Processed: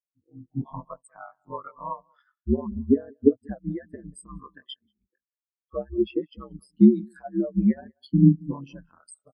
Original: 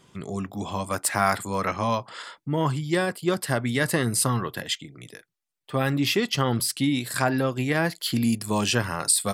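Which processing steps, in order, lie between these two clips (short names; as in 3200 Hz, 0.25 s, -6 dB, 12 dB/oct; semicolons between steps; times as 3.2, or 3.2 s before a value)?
low shelf 330 Hz -5.5 dB; compressor 20:1, threshold -31 dBFS, peak gain reduction 16 dB; ring modulator 70 Hz; AGC gain up to 8 dB; outdoor echo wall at 32 m, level -8 dB; spectral expander 4:1; gain +8 dB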